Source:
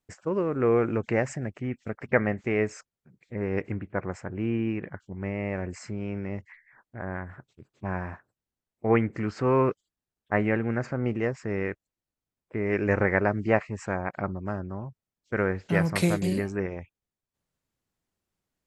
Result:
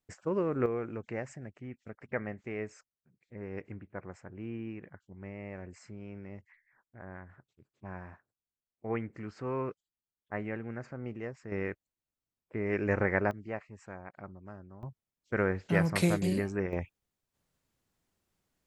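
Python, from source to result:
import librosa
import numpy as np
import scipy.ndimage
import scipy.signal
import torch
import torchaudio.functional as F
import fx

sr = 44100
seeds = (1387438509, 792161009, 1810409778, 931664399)

y = fx.gain(x, sr, db=fx.steps((0.0, -3.5), (0.66, -12.0), (11.52, -5.0), (13.31, -15.5), (14.83, -3.0), (16.73, 4.0)))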